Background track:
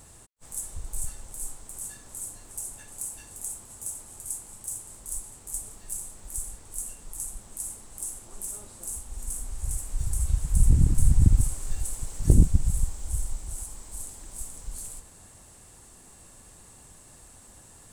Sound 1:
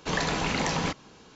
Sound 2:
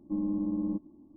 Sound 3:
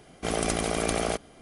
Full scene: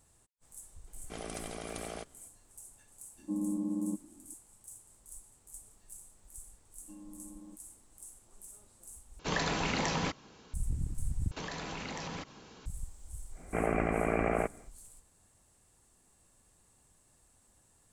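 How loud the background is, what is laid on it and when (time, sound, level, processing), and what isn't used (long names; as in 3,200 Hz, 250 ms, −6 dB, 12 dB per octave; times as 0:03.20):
background track −15.5 dB
0:00.87: mix in 3 −14.5 dB
0:03.18: mix in 2 −3 dB + Butterworth high-pass 150 Hz
0:06.78: mix in 2 −12.5 dB + spectral tilt +4 dB per octave
0:09.19: overwrite with 1 −4.5 dB
0:11.31: overwrite with 1 −1.5 dB + downward compressor, threshold −36 dBFS
0:13.30: mix in 3 −2 dB, fades 0.10 s + Butterworth low-pass 2,500 Hz 72 dB per octave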